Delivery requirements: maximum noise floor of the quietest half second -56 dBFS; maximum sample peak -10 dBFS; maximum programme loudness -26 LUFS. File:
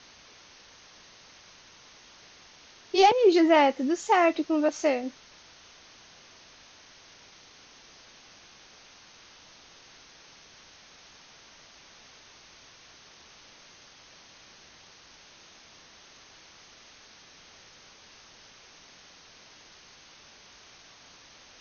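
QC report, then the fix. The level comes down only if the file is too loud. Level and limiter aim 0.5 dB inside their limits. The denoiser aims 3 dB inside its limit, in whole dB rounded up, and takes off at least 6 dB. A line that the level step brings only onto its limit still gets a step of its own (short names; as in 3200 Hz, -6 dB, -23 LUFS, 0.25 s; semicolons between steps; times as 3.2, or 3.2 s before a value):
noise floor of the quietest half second -54 dBFS: fail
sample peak -7.5 dBFS: fail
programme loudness -23.0 LUFS: fail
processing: gain -3.5 dB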